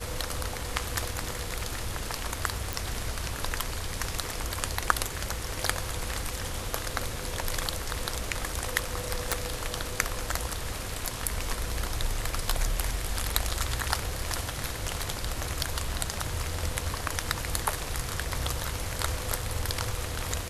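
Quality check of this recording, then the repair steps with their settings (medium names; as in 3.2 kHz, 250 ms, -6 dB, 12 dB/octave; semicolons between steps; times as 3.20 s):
2.73 s: pop
9.32 s: pop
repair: de-click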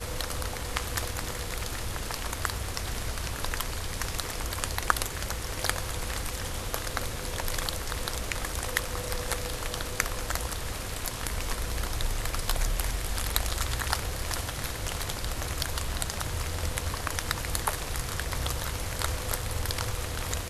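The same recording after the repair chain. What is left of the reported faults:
nothing left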